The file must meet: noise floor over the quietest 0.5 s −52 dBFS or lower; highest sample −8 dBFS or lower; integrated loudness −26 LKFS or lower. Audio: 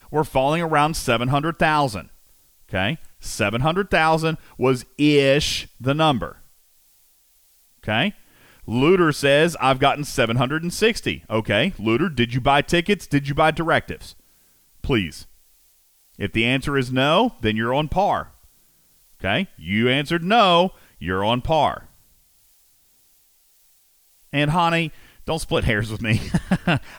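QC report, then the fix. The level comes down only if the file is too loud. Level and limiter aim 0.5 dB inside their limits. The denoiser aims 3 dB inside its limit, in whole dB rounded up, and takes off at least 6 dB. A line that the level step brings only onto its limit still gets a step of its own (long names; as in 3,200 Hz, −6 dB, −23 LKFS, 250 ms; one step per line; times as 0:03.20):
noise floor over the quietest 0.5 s −58 dBFS: in spec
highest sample −5.0 dBFS: out of spec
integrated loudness −20.5 LKFS: out of spec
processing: level −6 dB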